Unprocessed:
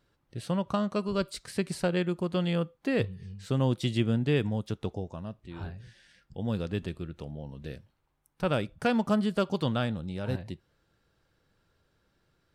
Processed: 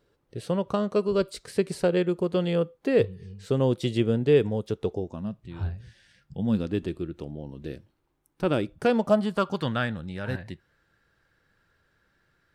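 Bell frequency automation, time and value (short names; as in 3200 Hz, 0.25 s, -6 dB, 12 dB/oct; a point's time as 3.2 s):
bell +10.5 dB 0.71 oct
4.91 s 440 Hz
5.82 s 62 Hz
6.76 s 330 Hz
8.77 s 330 Hz
9.64 s 1700 Hz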